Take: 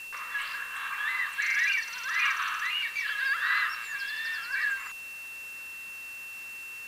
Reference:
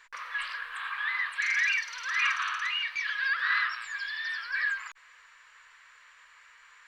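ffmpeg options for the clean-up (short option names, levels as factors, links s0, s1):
-af "bandreject=f=2700:w=30,afwtdn=0.0028"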